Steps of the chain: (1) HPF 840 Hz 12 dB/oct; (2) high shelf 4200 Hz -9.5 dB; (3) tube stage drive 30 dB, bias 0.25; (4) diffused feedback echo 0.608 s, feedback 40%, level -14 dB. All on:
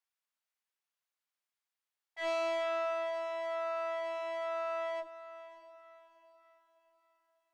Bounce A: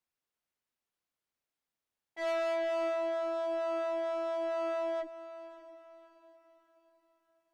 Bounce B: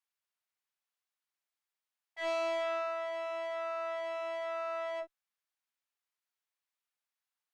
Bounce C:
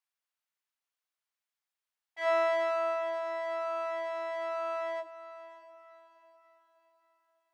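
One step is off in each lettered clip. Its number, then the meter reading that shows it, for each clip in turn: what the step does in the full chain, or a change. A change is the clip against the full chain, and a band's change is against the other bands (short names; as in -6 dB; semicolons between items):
1, crest factor change -1.5 dB; 4, echo-to-direct -13.0 dB to none; 3, crest factor change +6.0 dB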